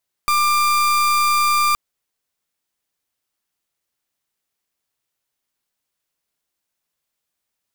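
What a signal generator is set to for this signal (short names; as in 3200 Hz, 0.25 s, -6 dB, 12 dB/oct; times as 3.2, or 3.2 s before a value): pulse 1190 Hz, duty 37% -16.5 dBFS 1.47 s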